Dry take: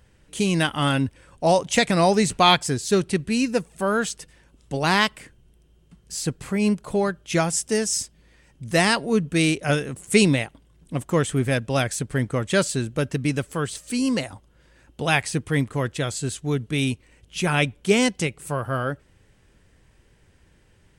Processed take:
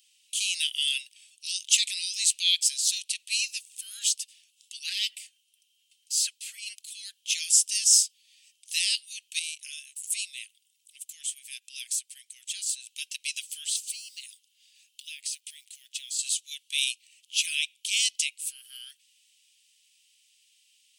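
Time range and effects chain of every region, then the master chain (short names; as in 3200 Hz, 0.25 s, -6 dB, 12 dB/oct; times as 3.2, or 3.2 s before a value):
4.79–6.76 notch comb 250 Hz + LFO bell 4.4 Hz 240–1600 Hz +18 dB
9.39–12.87 compressor 2:1, threshold -31 dBFS + bell 3600 Hz -5.5 dB 1.6 oct
13.78–16.19 HPF 170 Hz + compressor 16:1, threshold -33 dBFS + short-mantissa float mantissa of 4-bit
whole clip: limiter -13.5 dBFS; steep high-pass 2700 Hz 48 dB/oct; gain +6.5 dB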